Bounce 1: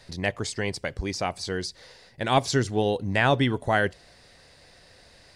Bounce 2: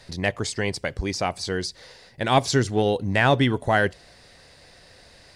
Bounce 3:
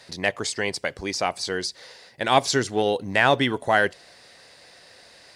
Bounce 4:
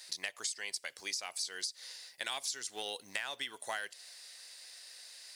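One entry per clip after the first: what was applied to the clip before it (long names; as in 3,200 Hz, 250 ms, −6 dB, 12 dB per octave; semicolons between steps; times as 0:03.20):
in parallel at −8 dB: asymmetric clip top −18 dBFS; on the sum: floating-point word with a short mantissa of 8 bits
high-pass filter 390 Hz 6 dB per octave; level +2 dB
first difference; downward compressor 16 to 1, threshold −38 dBFS, peak gain reduction 15.5 dB; level +4 dB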